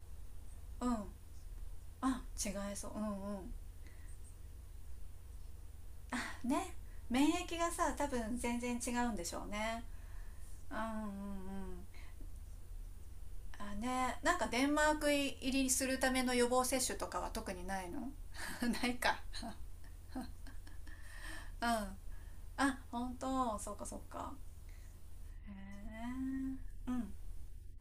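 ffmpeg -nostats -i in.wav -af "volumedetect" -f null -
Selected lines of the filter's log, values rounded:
mean_volume: -39.9 dB
max_volume: -17.4 dB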